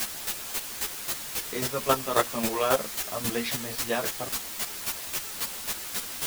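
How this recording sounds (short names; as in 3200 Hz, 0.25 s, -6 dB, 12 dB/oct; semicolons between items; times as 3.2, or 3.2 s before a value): a quantiser's noise floor 6-bit, dither triangular; chopped level 3.7 Hz, depth 65%, duty 15%; a shimmering, thickened sound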